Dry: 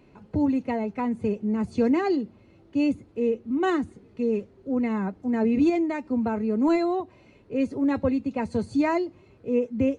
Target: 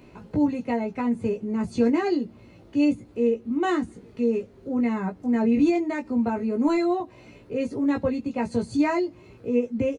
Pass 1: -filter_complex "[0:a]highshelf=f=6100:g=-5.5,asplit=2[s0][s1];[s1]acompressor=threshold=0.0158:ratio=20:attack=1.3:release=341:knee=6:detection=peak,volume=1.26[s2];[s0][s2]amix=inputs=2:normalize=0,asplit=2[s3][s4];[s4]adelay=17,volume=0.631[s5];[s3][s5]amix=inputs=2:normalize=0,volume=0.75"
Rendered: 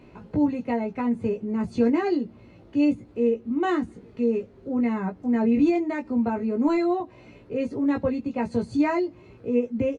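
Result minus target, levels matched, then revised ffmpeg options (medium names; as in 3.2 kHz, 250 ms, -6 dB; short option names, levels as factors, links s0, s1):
8 kHz band -6.5 dB
-filter_complex "[0:a]highshelf=f=6100:g=6,asplit=2[s0][s1];[s1]acompressor=threshold=0.0158:ratio=20:attack=1.3:release=341:knee=6:detection=peak,volume=1.26[s2];[s0][s2]amix=inputs=2:normalize=0,asplit=2[s3][s4];[s4]adelay=17,volume=0.631[s5];[s3][s5]amix=inputs=2:normalize=0,volume=0.75"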